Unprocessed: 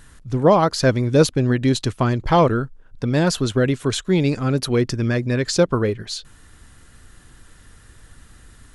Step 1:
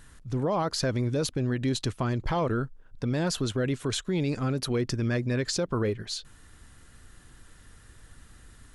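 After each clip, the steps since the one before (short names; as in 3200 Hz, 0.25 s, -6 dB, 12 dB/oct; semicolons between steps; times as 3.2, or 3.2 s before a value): limiter -14.5 dBFS, peak gain reduction 11.5 dB; gain -5 dB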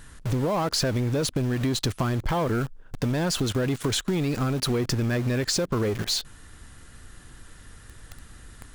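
in parallel at -8 dB: companded quantiser 2-bit; on the sum: compressor, threshold -28 dBFS, peak gain reduction 7 dB; gain +5.5 dB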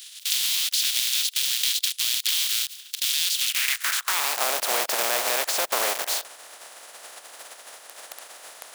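spectral contrast lowered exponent 0.29; high-pass sweep 3400 Hz -> 620 Hz, 3.36–4.49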